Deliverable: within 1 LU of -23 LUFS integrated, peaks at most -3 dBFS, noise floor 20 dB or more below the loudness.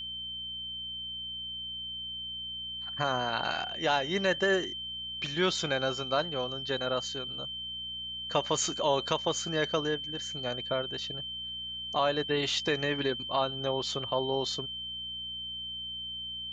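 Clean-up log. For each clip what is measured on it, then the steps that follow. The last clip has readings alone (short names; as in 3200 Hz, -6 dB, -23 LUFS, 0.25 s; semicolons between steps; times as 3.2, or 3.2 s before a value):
hum 60 Hz; harmonics up to 240 Hz; hum level -53 dBFS; steady tone 3100 Hz; tone level -36 dBFS; loudness -31.5 LUFS; peak -12.0 dBFS; loudness target -23.0 LUFS
-> de-hum 60 Hz, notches 4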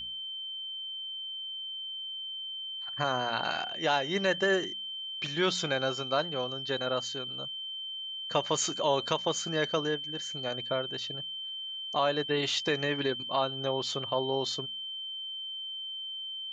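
hum none; steady tone 3100 Hz; tone level -36 dBFS
-> notch 3100 Hz, Q 30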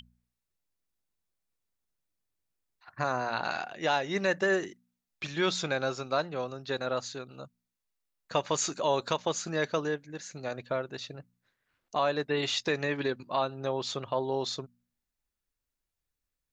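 steady tone none; loudness -31.5 LUFS; peak -12.5 dBFS; loudness target -23.0 LUFS
-> gain +8.5 dB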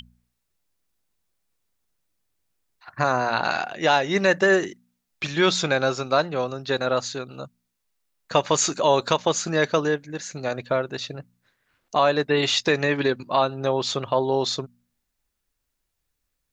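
loudness -23.0 LUFS; peak -4.0 dBFS; noise floor -78 dBFS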